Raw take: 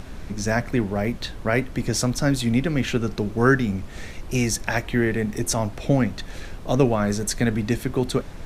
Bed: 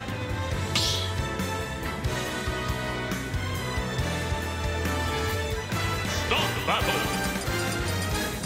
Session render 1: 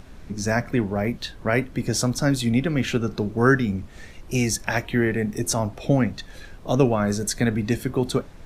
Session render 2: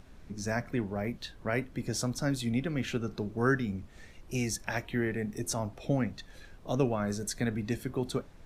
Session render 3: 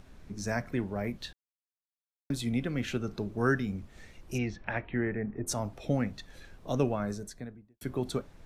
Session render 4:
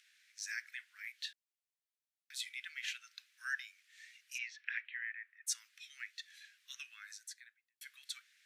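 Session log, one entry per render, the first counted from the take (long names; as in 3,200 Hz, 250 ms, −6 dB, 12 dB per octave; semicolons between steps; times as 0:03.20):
noise reduction from a noise print 7 dB
level −9.5 dB
0:01.33–0:02.30: silence; 0:04.37–0:05.46: low-pass filter 3,800 Hz → 1,700 Hz 24 dB per octave; 0:06.82–0:07.81: fade out and dull
Butterworth high-pass 1,700 Hz 48 dB per octave; high-shelf EQ 9,200 Hz −5 dB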